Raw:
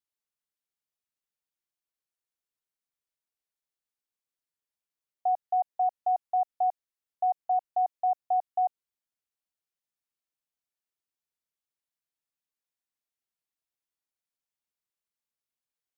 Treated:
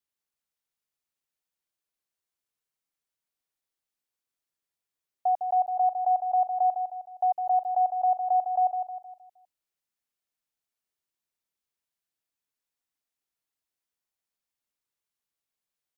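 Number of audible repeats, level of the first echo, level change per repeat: 4, -7.0 dB, -7.5 dB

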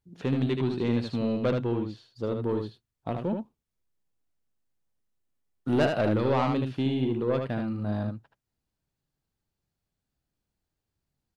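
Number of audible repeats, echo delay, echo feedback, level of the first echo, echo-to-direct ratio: 1, 76 ms, no steady repeat, -5.0 dB, -5.0 dB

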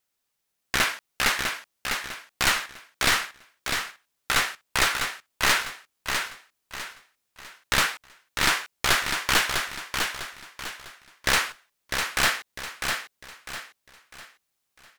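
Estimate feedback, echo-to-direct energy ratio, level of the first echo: 36%, -5.0 dB, -5.5 dB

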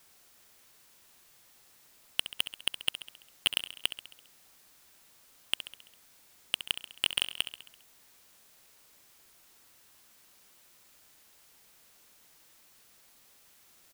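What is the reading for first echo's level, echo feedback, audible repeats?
-11.5 dB, 57%, 5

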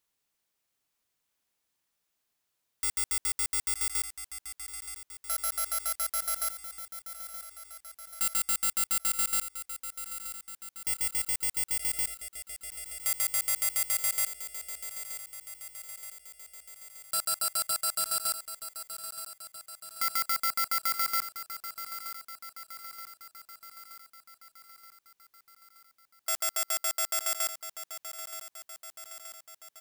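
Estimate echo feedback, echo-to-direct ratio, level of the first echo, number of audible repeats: 59%, -9.0 dB, -11.0 dB, 6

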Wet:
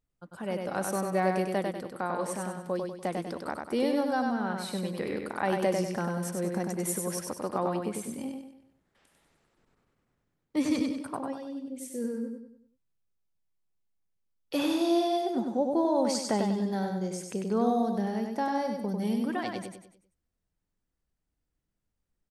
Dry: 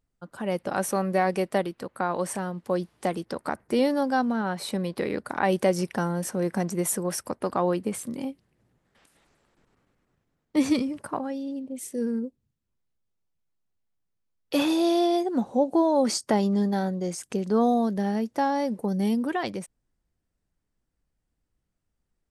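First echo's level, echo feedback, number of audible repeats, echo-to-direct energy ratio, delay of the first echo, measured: -4.0 dB, 41%, 5, -3.0 dB, 97 ms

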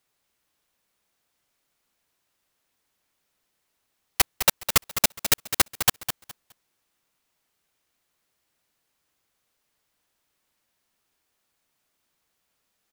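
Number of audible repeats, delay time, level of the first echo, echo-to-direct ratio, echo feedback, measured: 2, 0.208 s, -9.5 dB, -9.5 dB, 21%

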